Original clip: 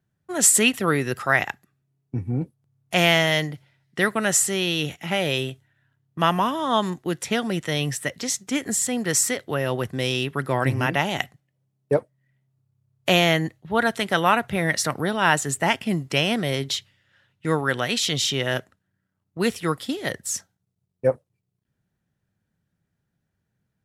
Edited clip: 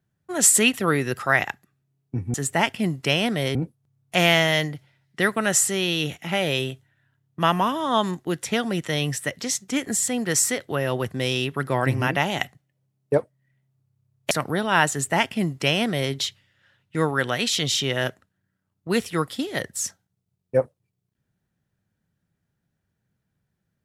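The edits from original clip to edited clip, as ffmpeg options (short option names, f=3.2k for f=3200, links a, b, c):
-filter_complex "[0:a]asplit=4[a][b][c][d];[a]atrim=end=2.342[e];[b]atrim=start=15.408:end=16.622[f];[c]atrim=start=2.338:end=13.102[g];[d]atrim=start=14.808[h];[e][f]acrossfade=d=0.004:c1=hsin:c2=hsin[i];[i][g]acrossfade=d=0.004:c1=hsin:c2=hsin[j];[j][h]acrossfade=d=0.004:c1=hsin:c2=hsin"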